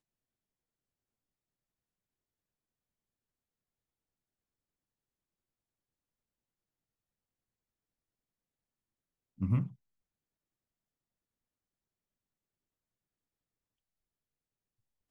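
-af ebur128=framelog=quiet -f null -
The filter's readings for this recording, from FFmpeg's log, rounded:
Integrated loudness:
  I:         -34.2 LUFS
  Threshold: -45.5 LUFS
Loudness range:
  LRA:         1.0 LU
  Threshold: -61.5 LUFS
  LRA low:   -42.2 LUFS
  LRA high:  -41.2 LUFS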